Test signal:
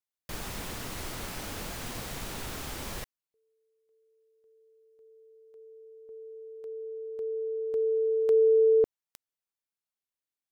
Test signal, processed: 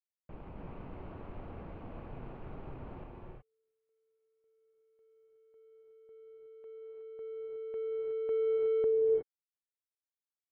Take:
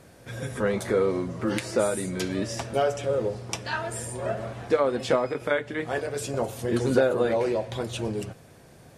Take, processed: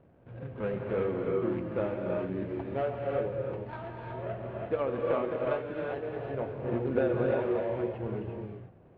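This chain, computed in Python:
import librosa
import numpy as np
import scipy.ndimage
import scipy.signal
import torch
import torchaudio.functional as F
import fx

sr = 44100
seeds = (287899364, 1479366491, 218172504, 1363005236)

y = scipy.ndimage.median_filter(x, 25, mode='constant')
y = scipy.signal.sosfilt(scipy.signal.butter(4, 2700.0, 'lowpass', fs=sr, output='sos'), y)
y = fx.rev_gated(y, sr, seeds[0], gate_ms=390, shape='rising', drr_db=-0.5)
y = F.gain(torch.from_numpy(y), -7.5).numpy()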